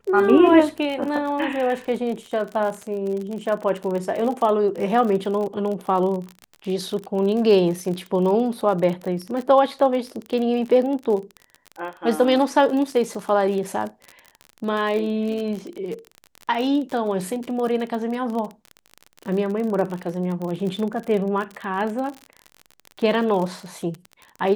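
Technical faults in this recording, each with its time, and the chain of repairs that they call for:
crackle 39 per s -27 dBFS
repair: de-click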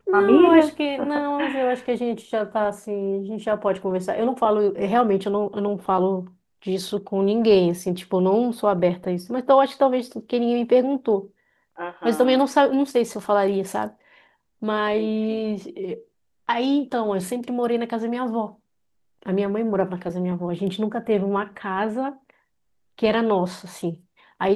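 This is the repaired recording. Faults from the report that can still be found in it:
nothing left

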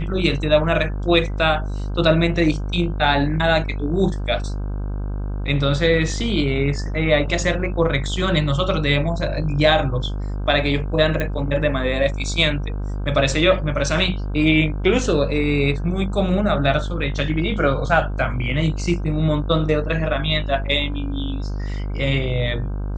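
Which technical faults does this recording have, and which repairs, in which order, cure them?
buzz 50 Hz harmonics 32 -25 dBFS
11.20 s: pop -11 dBFS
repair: de-click; de-hum 50 Hz, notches 32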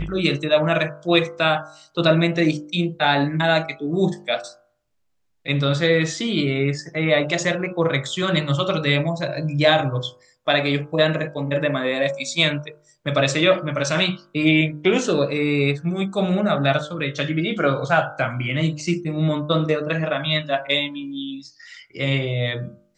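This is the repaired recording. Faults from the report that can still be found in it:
nothing left

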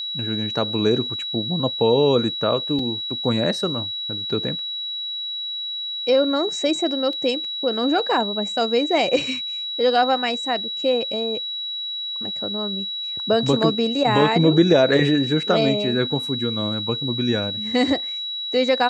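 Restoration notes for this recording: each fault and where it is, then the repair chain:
whine 3.9 kHz -26 dBFS
2.79 s: dropout 3.4 ms
7.13 s: dropout 2.4 ms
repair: band-stop 3.9 kHz, Q 30; interpolate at 2.79 s, 3.4 ms; interpolate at 7.13 s, 2.4 ms

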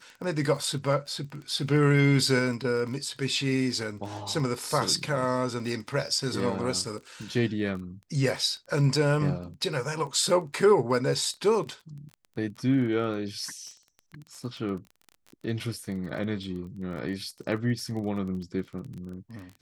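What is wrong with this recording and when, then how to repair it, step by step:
crackle 21 per s -36 dBFS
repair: de-click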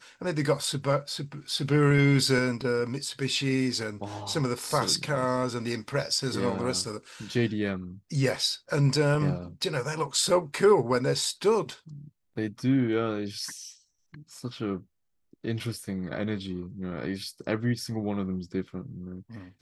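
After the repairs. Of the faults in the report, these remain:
nothing left

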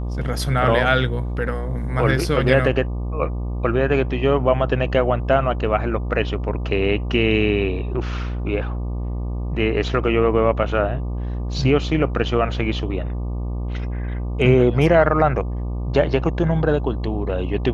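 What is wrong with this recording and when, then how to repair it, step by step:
buzz 60 Hz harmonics 20 -25 dBFS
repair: de-hum 60 Hz, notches 20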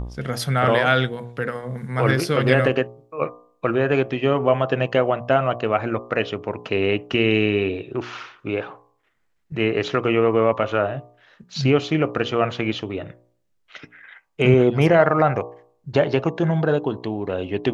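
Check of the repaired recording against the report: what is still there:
nothing left

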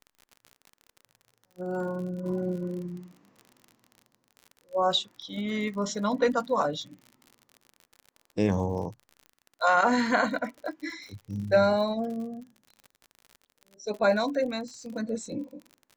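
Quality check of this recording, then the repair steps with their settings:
crackle 51 per s -38 dBFS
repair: de-click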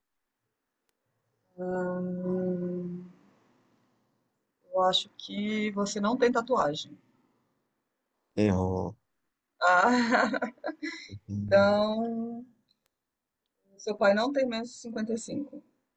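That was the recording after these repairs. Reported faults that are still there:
nothing left

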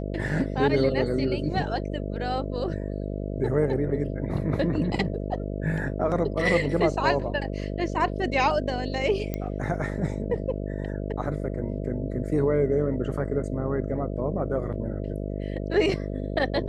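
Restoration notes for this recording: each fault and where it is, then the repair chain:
buzz 50 Hz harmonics 13 -31 dBFS
9.34 s: pop -16 dBFS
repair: de-click; de-hum 50 Hz, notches 13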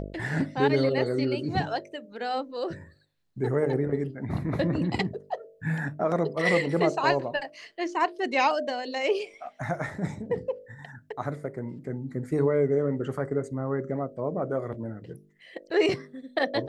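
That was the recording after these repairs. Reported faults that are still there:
nothing left

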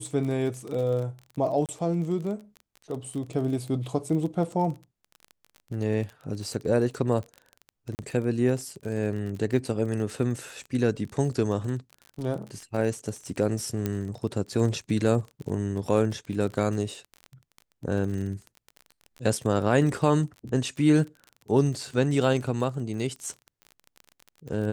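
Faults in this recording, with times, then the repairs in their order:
crackle 29 per s -33 dBFS
1.66–1.69 s: dropout 28 ms
7.95–7.99 s: dropout 39 ms
13.86 s: pop -14 dBFS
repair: de-click; interpolate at 1.66 s, 28 ms; interpolate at 7.95 s, 39 ms

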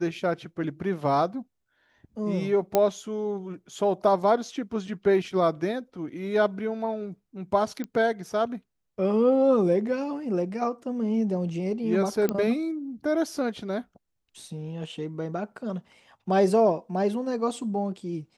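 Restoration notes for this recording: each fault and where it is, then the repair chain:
2.75 s: pop -8 dBFS
7.84 s: pop -21 dBFS
12.29 s: pop -13 dBFS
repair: de-click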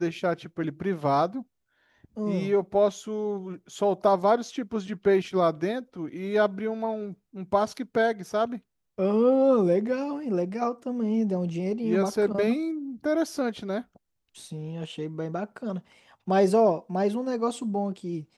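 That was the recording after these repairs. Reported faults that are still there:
2.75 s: pop

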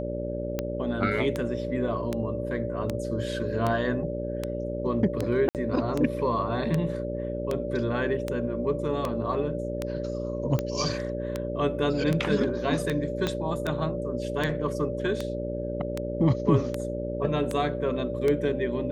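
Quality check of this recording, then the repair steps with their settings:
buzz 60 Hz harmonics 10 -33 dBFS
tick 78 rpm -14 dBFS
whine 580 Hz -33 dBFS
5.49–5.55 s: dropout 58 ms
13.27 s: pop -13 dBFS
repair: de-click; de-hum 60 Hz, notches 10; band-stop 580 Hz, Q 30; interpolate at 5.49 s, 58 ms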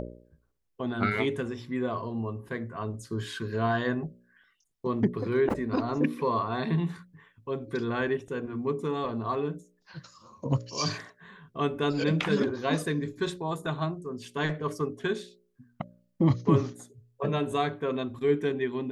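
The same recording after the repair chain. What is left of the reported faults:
13.27 s: pop

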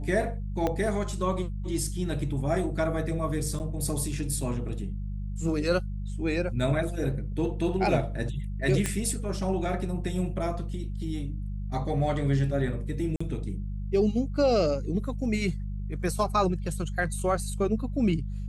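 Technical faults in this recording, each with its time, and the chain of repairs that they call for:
hum 50 Hz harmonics 4 -33 dBFS
0.67 s: pop -15 dBFS
3.59–3.60 s: dropout 8.4 ms
8.86 s: pop -13 dBFS
13.16–13.21 s: dropout 45 ms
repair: de-click; de-hum 50 Hz, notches 4; interpolate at 3.59 s, 8.4 ms; interpolate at 13.16 s, 45 ms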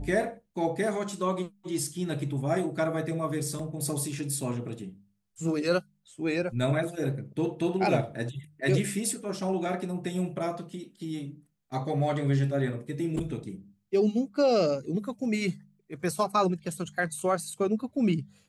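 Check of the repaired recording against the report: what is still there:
0.67 s: pop

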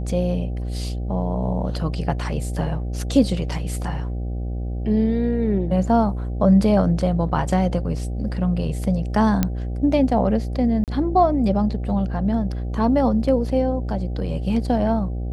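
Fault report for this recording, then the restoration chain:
buzz 60 Hz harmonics 13 -26 dBFS
9.43 s: pop -6 dBFS
10.84–10.88 s: dropout 38 ms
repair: de-click; de-hum 60 Hz, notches 13; interpolate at 10.84 s, 38 ms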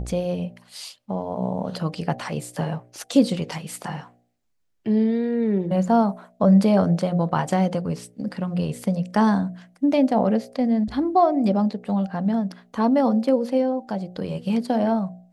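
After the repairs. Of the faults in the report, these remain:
nothing left

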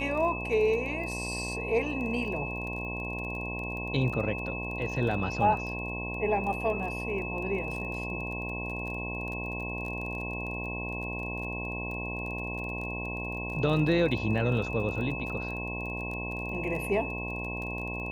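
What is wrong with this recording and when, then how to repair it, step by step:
buzz 60 Hz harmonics 18 -37 dBFS
crackle 23 per s -36 dBFS
whine 2.6 kHz -36 dBFS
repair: de-click; de-hum 60 Hz, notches 18; band-stop 2.6 kHz, Q 30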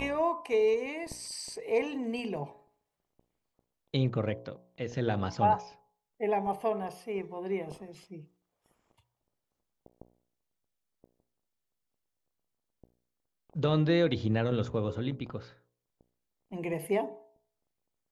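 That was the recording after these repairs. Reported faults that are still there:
nothing left

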